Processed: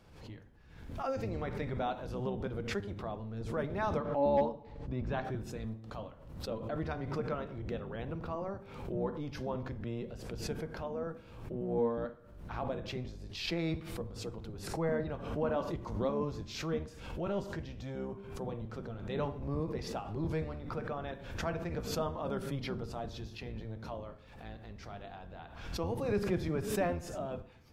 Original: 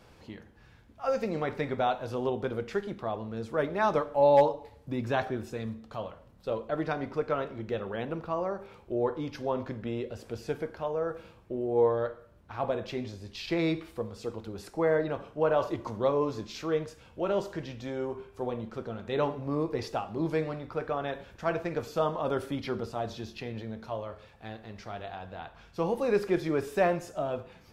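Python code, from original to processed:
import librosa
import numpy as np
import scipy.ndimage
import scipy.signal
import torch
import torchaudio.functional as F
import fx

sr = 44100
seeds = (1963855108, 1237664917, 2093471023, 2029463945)

y = fx.octave_divider(x, sr, octaves=1, level_db=3.0)
y = fx.air_absorb(y, sr, metres=120.0, at=(3.97, 5.25))
y = fx.pre_swell(y, sr, db_per_s=61.0)
y = y * 10.0 ** (-8.0 / 20.0)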